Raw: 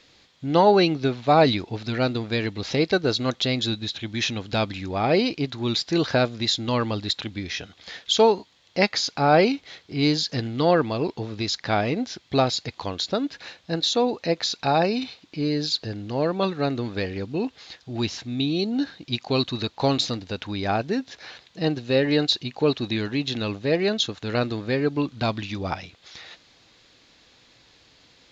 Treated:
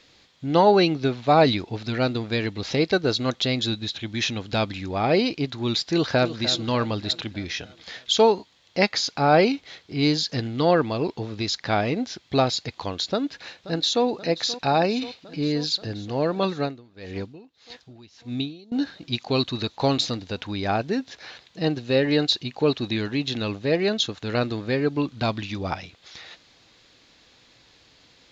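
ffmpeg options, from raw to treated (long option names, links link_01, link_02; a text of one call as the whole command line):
ffmpeg -i in.wav -filter_complex "[0:a]asplit=2[link_01][link_02];[link_02]afade=type=in:start_time=5.83:duration=0.01,afade=type=out:start_time=6.42:duration=0.01,aecho=0:1:300|600|900|1200|1500|1800:0.237137|0.130426|0.0717341|0.0394537|0.0216996|0.0119348[link_03];[link_01][link_03]amix=inputs=2:normalize=0,asplit=2[link_04][link_05];[link_05]afade=type=in:start_time=13.1:duration=0.01,afade=type=out:start_time=14.05:duration=0.01,aecho=0:1:530|1060|1590|2120|2650|3180|3710|4240|4770|5300|5830|6360:0.158489|0.126791|0.101433|0.0811465|0.0649172|0.0519338|0.041547|0.0332376|0.0265901|0.0212721|0.0170177|0.0136141[link_06];[link_04][link_06]amix=inputs=2:normalize=0,asettb=1/sr,asplit=3[link_07][link_08][link_09];[link_07]atrim=end=16.594[link_10];[link_08]atrim=start=16.59:end=18.72,asetpts=PTS-STARTPTS,afade=type=in:duration=0.004:curve=qsin,afade=type=out:start_time=2.126:duration=0.004:curve=qsin,aeval=exprs='val(0)*pow(10,-24*(0.5-0.5*cos(2*PI*1.7*n/s))/20)':channel_layout=same[link_11];[link_09]atrim=start=18.716[link_12];[link_10][link_11]acrossfade=duration=0.004:curve1=hsin:curve2=qsin[link_13];[link_13][link_12]acrossfade=duration=0.004:curve1=qsin:curve2=hsin" out.wav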